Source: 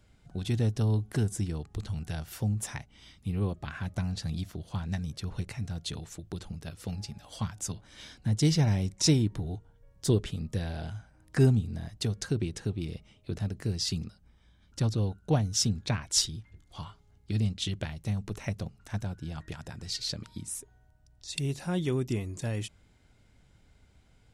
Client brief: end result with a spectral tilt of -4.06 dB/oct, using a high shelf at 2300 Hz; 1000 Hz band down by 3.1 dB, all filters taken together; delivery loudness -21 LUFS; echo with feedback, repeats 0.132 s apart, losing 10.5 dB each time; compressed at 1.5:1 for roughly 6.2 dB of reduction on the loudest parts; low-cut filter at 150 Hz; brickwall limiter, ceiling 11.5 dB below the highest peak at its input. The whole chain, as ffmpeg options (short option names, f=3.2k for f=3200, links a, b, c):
-af "highpass=150,equalizer=f=1k:t=o:g=-5.5,highshelf=f=2.3k:g=6,acompressor=threshold=-34dB:ratio=1.5,alimiter=level_in=0.5dB:limit=-24dB:level=0:latency=1,volume=-0.5dB,aecho=1:1:132|264|396:0.299|0.0896|0.0269,volume=17dB"